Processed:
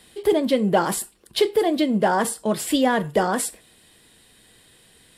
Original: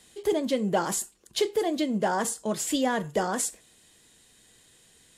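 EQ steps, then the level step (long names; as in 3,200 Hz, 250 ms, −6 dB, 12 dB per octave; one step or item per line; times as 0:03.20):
parametric band 6,600 Hz −13 dB 0.42 octaves
+6.5 dB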